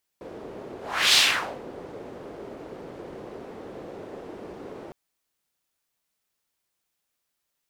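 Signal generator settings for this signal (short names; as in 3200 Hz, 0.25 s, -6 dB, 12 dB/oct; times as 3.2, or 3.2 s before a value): whoosh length 4.71 s, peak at 0.94, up 0.39 s, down 0.49 s, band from 420 Hz, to 3900 Hz, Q 1.8, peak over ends 22.5 dB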